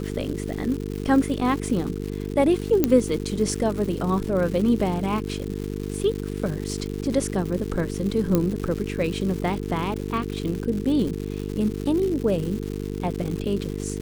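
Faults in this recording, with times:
buzz 50 Hz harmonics 9 -30 dBFS
crackle 260/s -30 dBFS
2.84 pop -5 dBFS
8.35 pop -8 dBFS

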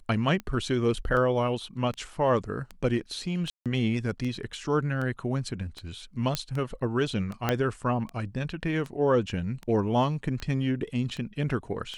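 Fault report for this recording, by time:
tick 78 rpm -23 dBFS
3.5–3.66 gap 0.157 s
6.35 pop -11 dBFS
7.49 pop -10 dBFS

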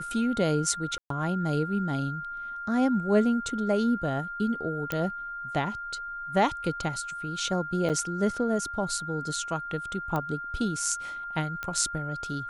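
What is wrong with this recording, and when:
tone 1400 Hz -34 dBFS
0.98–1.1 gap 0.123 s
4.92 pop -14 dBFS
7.89–7.9 gap 7.7 ms
10.16 pop -17 dBFS
11.63 pop -19 dBFS

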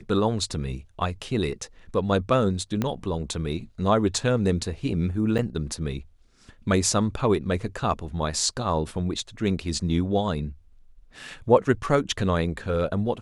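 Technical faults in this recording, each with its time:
2.82 pop -12 dBFS
5.38–5.39 gap 7.7 ms

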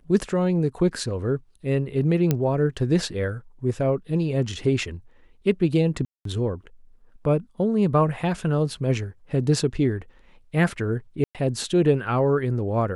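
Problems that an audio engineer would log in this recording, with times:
2.31 pop -8 dBFS
6.05–6.25 gap 0.203 s
11.24–11.35 gap 0.107 s

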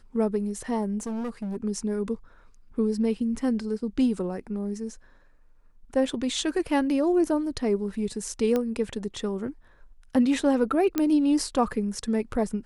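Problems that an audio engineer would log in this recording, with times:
1–1.57 clipped -28.5 dBFS
8.56 pop -14 dBFS
10.98 pop -11 dBFS

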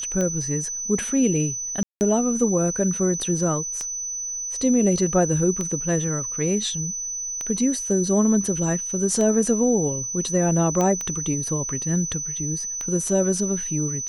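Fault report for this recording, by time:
tick 33 1/3 rpm -14 dBFS
tone 6000 Hz -27 dBFS
1.83–2.01 gap 0.179 s
10.81 pop -11 dBFS

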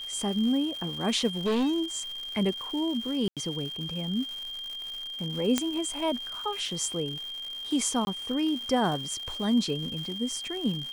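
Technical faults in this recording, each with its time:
crackle 300/s -36 dBFS
tone 3200 Hz -35 dBFS
1.45–2 clipped -23 dBFS
3.28–3.37 gap 87 ms
5.58 pop -9 dBFS
8.05–8.07 gap 21 ms

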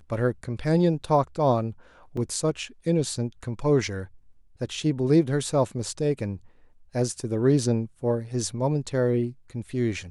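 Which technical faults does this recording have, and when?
2.17 gap 3.3 ms

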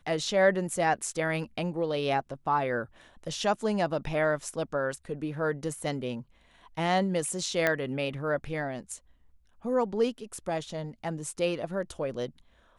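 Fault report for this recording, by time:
7.67 pop -11 dBFS

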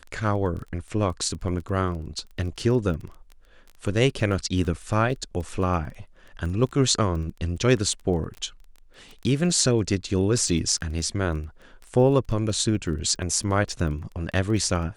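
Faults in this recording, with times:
crackle 16/s -33 dBFS

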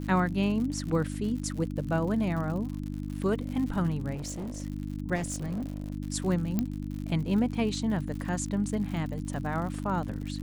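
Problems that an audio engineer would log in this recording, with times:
crackle 91/s -36 dBFS
hum 50 Hz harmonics 6 -35 dBFS
4.14–4.62 clipped -32.5 dBFS
5.15–5.92 clipped -29 dBFS
6.59 pop -15 dBFS

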